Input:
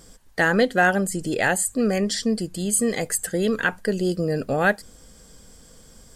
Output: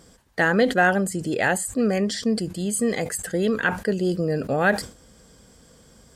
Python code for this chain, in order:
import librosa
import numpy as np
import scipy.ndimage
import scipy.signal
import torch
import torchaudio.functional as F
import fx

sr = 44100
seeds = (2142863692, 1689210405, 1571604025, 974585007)

y = scipy.signal.sosfilt(scipy.signal.butter(2, 56.0, 'highpass', fs=sr, output='sos'), x)
y = fx.high_shelf(y, sr, hz=5000.0, db=-7.0)
y = fx.sustainer(y, sr, db_per_s=140.0)